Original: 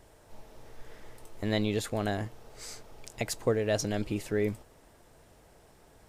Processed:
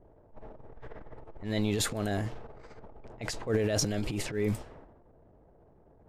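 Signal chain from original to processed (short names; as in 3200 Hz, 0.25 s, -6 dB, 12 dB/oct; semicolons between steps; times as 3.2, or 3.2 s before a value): low-pass opened by the level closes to 590 Hz, open at -27.5 dBFS; transient shaper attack -11 dB, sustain +9 dB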